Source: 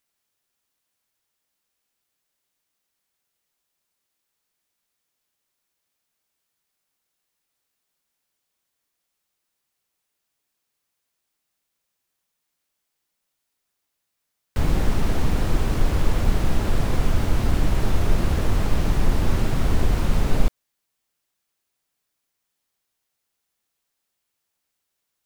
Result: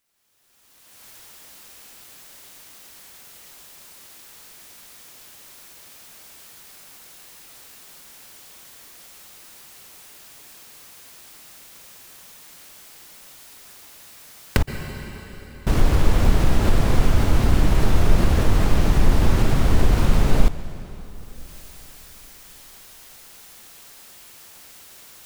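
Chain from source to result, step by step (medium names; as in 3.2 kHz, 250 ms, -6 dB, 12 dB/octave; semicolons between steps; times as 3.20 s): recorder AGC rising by 28 dB/s; 14.62–15.67 s: inverted gate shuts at -14 dBFS, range -37 dB; plate-style reverb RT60 4.3 s, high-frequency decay 0.9×, pre-delay 110 ms, DRR 14.5 dB; loudness maximiser +4 dB; trim -1 dB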